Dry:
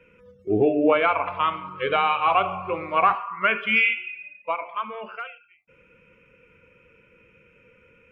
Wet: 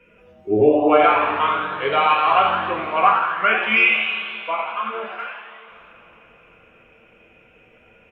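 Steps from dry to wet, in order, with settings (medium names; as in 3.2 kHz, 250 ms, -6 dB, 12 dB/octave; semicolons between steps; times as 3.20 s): frequency-shifting echo 85 ms, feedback 57%, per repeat +140 Hz, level -7.5 dB; two-slope reverb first 0.35 s, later 3.8 s, from -18 dB, DRR -0.5 dB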